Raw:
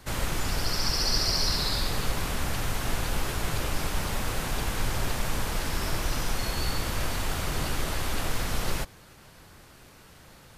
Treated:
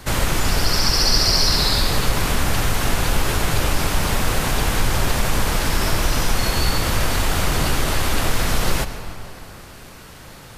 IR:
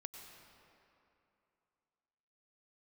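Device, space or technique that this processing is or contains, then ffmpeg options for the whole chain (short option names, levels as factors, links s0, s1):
ducked reverb: -filter_complex "[0:a]asplit=3[s0][s1][s2];[1:a]atrim=start_sample=2205[s3];[s1][s3]afir=irnorm=-1:irlink=0[s4];[s2]apad=whole_len=466509[s5];[s4][s5]sidechaincompress=threshold=0.0398:ratio=8:attack=16:release=116,volume=1.26[s6];[s0][s6]amix=inputs=2:normalize=0,volume=2.11"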